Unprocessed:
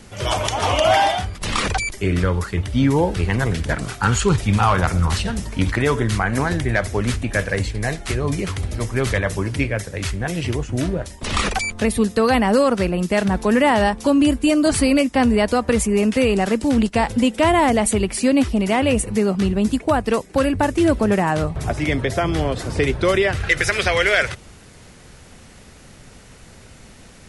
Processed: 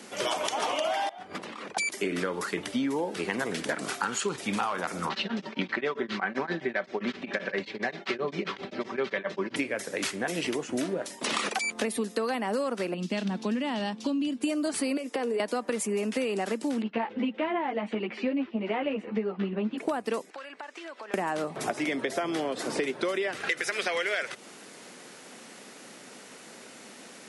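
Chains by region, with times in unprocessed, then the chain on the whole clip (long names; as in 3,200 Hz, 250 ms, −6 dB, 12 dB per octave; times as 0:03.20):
0:01.09–0:01.77: compressor whose output falls as the input rises −33 dBFS + low-pass filter 1,400 Hz 6 dB per octave + hard clipping −21.5 dBFS
0:05.09–0:09.56: low-pass filter 4,300 Hz 24 dB per octave + comb filter 5.2 ms, depth 48% + tremolo along a rectified sine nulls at 7.6 Hz
0:12.94–0:14.41: low-pass filter 4,300 Hz + flat-topped bell 870 Hz −11 dB 3 octaves
0:14.97–0:15.40: high-pass filter 290 Hz + parametric band 460 Hz +13.5 dB 0.27 octaves + downward compressor 10 to 1, threshold −20 dBFS
0:16.82–0:19.78: low-pass filter 3,100 Hz 24 dB per octave + string-ensemble chorus
0:20.30–0:21.14: high-pass filter 980 Hz + downward compressor 8 to 1, threshold −37 dBFS + high-frequency loss of the air 120 metres
whole clip: high-pass filter 230 Hz 24 dB per octave; downward compressor 10 to 1, threshold −26 dBFS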